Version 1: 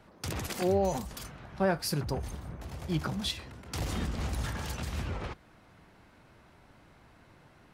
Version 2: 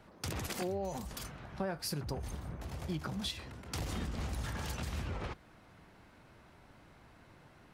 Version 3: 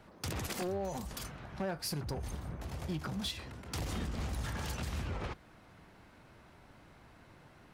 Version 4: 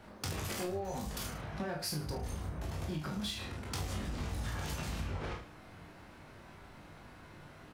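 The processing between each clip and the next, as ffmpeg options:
ffmpeg -i in.wav -af "acompressor=threshold=-33dB:ratio=6,volume=-1dB" out.wav
ffmpeg -i in.wav -af "volume=32dB,asoftclip=hard,volume=-32dB,volume=1dB" out.wav
ffmpeg -i in.wav -filter_complex "[0:a]asplit=2[link_01][link_02];[link_02]adelay=33,volume=-6.5dB[link_03];[link_01][link_03]amix=inputs=2:normalize=0,asplit=2[link_04][link_05];[link_05]aecho=0:1:20|44|72.8|107.4|148.8:0.631|0.398|0.251|0.158|0.1[link_06];[link_04][link_06]amix=inputs=2:normalize=0,acompressor=threshold=-38dB:ratio=3,volume=2dB" out.wav

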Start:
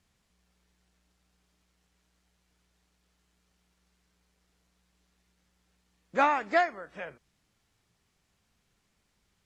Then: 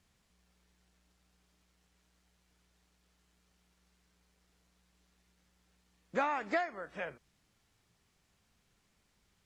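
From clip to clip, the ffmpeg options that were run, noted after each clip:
ffmpeg -i in.wav -af "acompressor=threshold=-29dB:ratio=6" out.wav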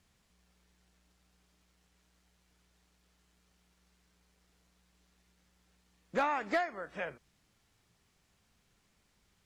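ffmpeg -i in.wav -af "asoftclip=type=hard:threshold=-24dB,volume=1.5dB" out.wav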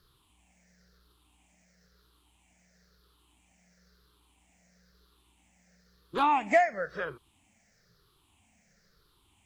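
ffmpeg -i in.wav -af "afftfilt=real='re*pow(10,17/40*sin(2*PI*(0.6*log(max(b,1)*sr/1024/100)/log(2)-(-1)*(pts-256)/sr)))':imag='im*pow(10,17/40*sin(2*PI*(0.6*log(max(b,1)*sr/1024/100)/log(2)-(-1)*(pts-256)/sr)))':win_size=1024:overlap=0.75,volume=2dB" out.wav

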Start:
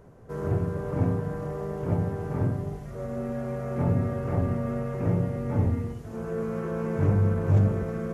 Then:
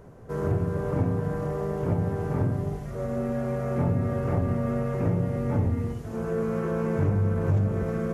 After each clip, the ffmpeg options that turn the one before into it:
ffmpeg -i in.wav -af "acompressor=threshold=-25dB:ratio=3,volume=3.5dB" out.wav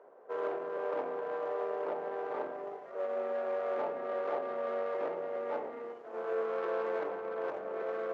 ffmpeg -i in.wav -af "adynamicsmooth=sensitivity=2.5:basefreq=1300,highpass=frequency=470:width=0.5412,highpass=frequency=470:width=1.3066" out.wav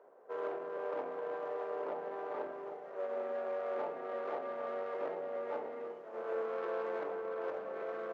ffmpeg -i in.wav -af "aecho=1:1:799:0.299,volume=-3.5dB" out.wav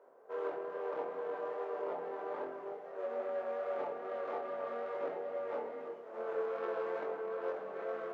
ffmpeg -i in.wav -af "flanger=delay=22.5:depth=2.8:speed=2.4,volume=2.5dB" out.wav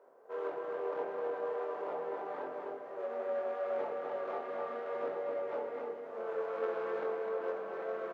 ffmpeg -i in.wav -af "aecho=1:1:255:0.596" out.wav

